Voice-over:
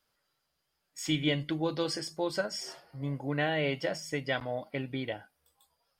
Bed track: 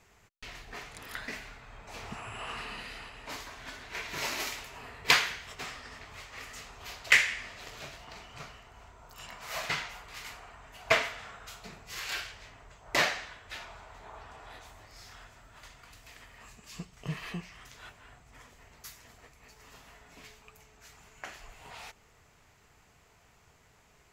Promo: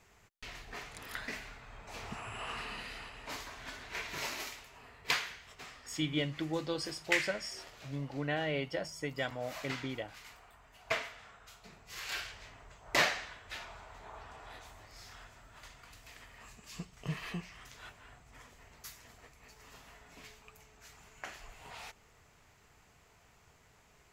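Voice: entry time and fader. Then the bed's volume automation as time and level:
4.90 s, -4.5 dB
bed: 4.01 s -1.5 dB
4.61 s -9 dB
11.6 s -9 dB
12.29 s -1.5 dB

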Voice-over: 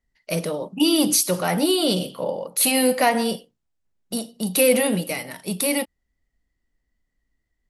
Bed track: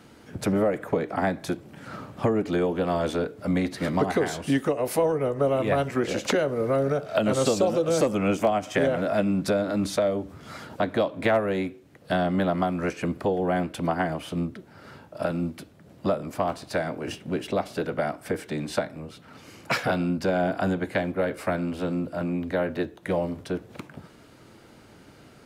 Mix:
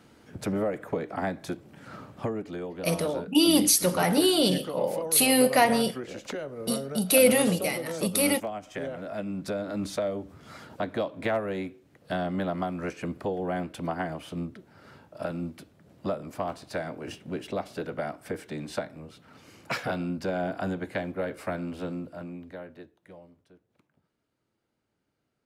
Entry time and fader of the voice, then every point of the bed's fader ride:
2.55 s, -2.0 dB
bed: 2.1 s -5 dB
2.56 s -11.5 dB
9.02 s -11.5 dB
9.82 s -5.5 dB
21.85 s -5.5 dB
23.55 s -28.5 dB

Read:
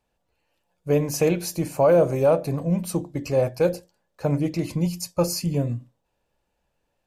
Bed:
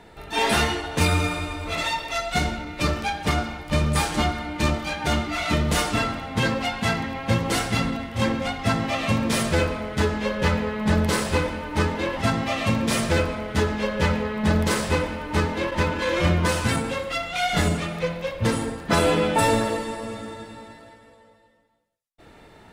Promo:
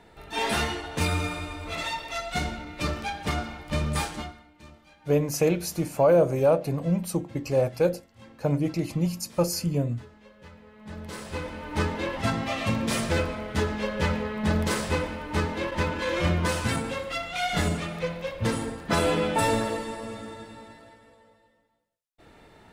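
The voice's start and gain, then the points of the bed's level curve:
4.20 s, -2.0 dB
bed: 4.03 s -5.5 dB
4.54 s -27 dB
10.55 s -27 dB
11.73 s -4 dB

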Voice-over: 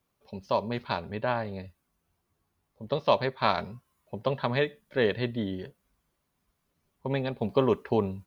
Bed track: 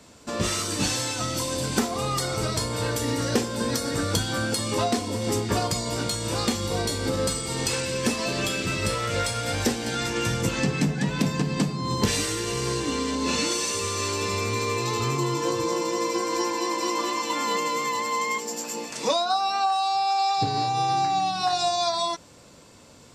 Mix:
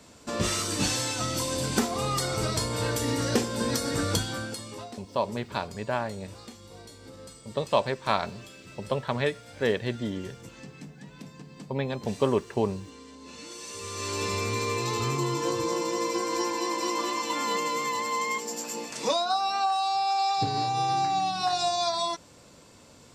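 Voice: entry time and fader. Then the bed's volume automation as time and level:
4.65 s, -0.5 dB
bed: 4.13 s -1.5 dB
5.02 s -20.5 dB
13.32 s -20.5 dB
14.2 s -2.5 dB

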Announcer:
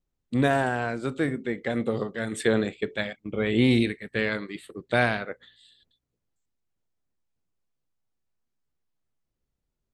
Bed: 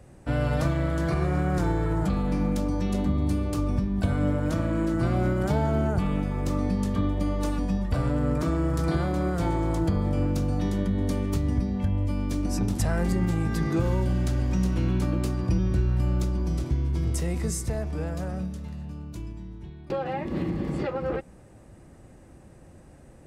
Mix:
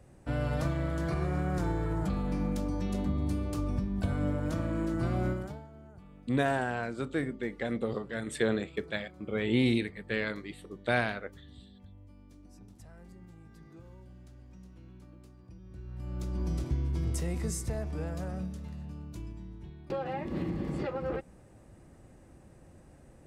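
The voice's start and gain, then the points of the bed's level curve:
5.95 s, -5.5 dB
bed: 5.31 s -6 dB
5.69 s -27 dB
15.6 s -27 dB
16.42 s -5 dB

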